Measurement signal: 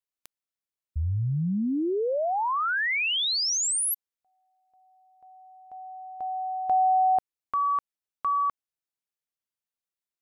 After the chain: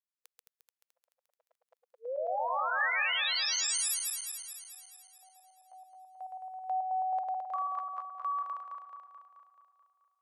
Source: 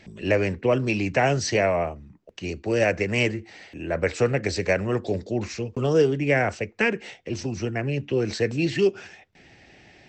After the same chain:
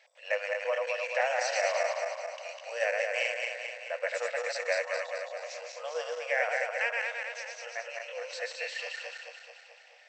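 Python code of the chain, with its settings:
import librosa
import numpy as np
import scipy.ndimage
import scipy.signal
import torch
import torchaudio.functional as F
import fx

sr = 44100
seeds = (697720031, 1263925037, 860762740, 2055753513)

y = fx.reverse_delay_fb(x, sr, ms=108, feedback_pct=76, wet_db=-2.5)
y = fx.brickwall_highpass(y, sr, low_hz=480.0)
y = fx.dynamic_eq(y, sr, hz=1800.0, q=7.5, threshold_db=-43.0, ratio=4.0, max_db=5)
y = y * 10.0 ** (-8.5 / 20.0)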